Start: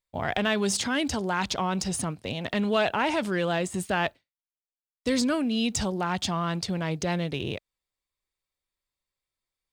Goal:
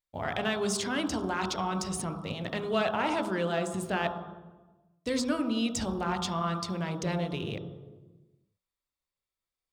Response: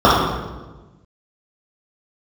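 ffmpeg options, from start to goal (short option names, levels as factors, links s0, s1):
-filter_complex "[0:a]bandreject=f=60:t=h:w=6,bandreject=f=120:t=h:w=6,bandreject=f=180:t=h:w=6,bandreject=f=240:t=h:w=6,asplit=2[s0][s1];[1:a]atrim=start_sample=2205,adelay=12[s2];[s1][s2]afir=irnorm=-1:irlink=0,volume=0.0158[s3];[s0][s3]amix=inputs=2:normalize=0,volume=0.562"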